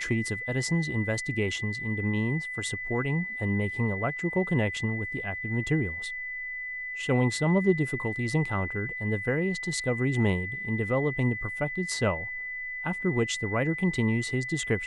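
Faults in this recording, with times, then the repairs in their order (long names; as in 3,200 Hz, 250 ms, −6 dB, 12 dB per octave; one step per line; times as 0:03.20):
whistle 2,000 Hz −33 dBFS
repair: notch filter 2,000 Hz, Q 30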